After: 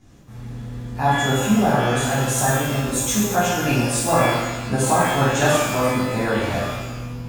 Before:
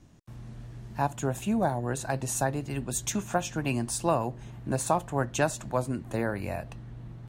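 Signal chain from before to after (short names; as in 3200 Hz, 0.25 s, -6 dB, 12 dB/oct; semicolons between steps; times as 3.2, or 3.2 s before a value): shimmer reverb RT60 1.1 s, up +12 st, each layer -8 dB, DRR -9.5 dB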